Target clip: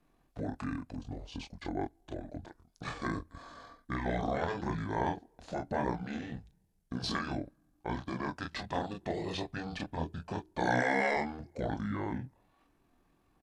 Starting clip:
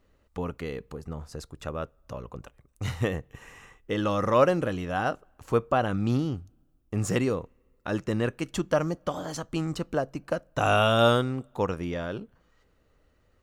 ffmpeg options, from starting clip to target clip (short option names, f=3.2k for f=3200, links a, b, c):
-filter_complex "[0:a]acontrast=73,afftfilt=real='re*lt(hypot(re,im),0.501)':imag='im*lt(hypot(re,im),0.501)':win_size=1024:overlap=0.75,asplit=2[a][b];[b]aecho=0:1:14|29|43:0.178|0.668|0.224[c];[a][c]amix=inputs=2:normalize=0,asetrate=26222,aresample=44100,atempo=1.68179,lowshelf=f=94:g=-8.5,volume=-8.5dB"